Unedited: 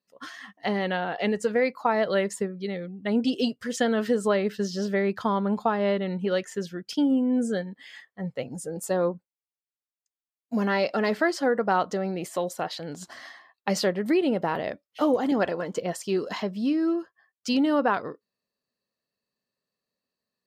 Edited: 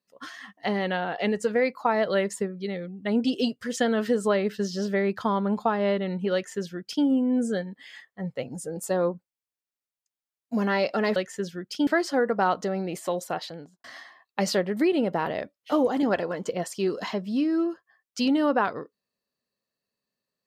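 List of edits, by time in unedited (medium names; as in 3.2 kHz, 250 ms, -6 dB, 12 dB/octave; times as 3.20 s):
6.34–7.05 s: copy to 11.16 s
12.67–13.13 s: studio fade out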